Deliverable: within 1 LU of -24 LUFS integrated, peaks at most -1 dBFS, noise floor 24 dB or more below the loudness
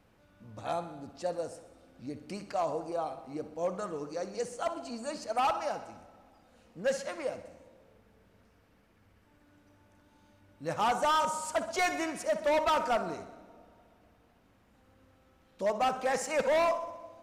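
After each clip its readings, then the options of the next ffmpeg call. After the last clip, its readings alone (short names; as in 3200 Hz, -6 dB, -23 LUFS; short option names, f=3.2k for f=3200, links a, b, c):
loudness -32.5 LUFS; peak -23.0 dBFS; loudness target -24.0 LUFS
-> -af "volume=8.5dB"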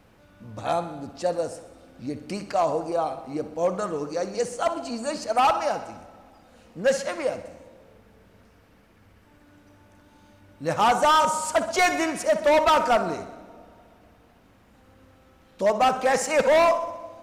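loudness -24.0 LUFS; peak -14.5 dBFS; noise floor -57 dBFS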